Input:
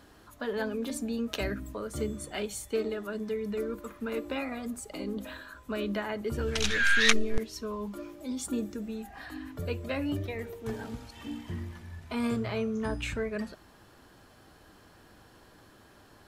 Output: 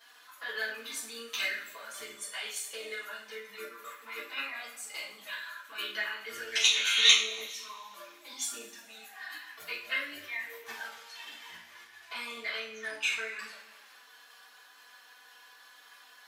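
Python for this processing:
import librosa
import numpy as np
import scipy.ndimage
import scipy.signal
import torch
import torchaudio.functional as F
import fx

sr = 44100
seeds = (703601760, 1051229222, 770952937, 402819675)

y = fx.env_flanger(x, sr, rest_ms=4.6, full_db=-26.0)
y = fx.peak_eq(y, sr, hz=9000.0, db=-6.0, octaves=1.3)
y = fx.level_steps(y, sr, step_db=9)
y = scipy.signal.sosfilt(scipy.signal.butter(2, 1500.0, 'highpass', fs=sr, output='sos'), y)
y = fx.rev_double_slope(y, sr, seeds[0], early_s=0.41, late_s=1.8, knee_db=-18, drr_db=-7.5)
y = F.gain(torch.from_numpy(y), 6.0).numpy()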